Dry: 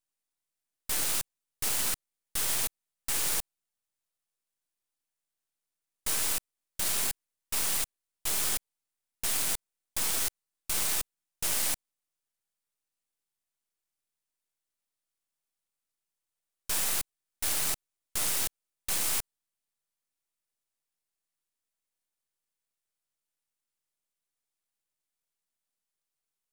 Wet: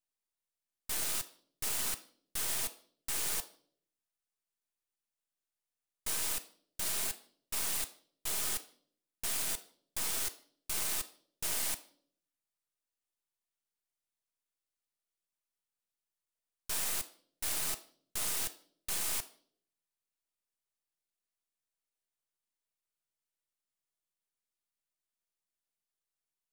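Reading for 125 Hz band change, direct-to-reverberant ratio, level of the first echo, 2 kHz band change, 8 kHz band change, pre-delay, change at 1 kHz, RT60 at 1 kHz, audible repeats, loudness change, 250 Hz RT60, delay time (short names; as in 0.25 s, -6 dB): -5.5 dB, 8.0 dB, none, -5.0 dB, -5.0 dB, 3 ms, -5.0 dB, 0.45 s, none, -5.0 dB, 0.80 s, none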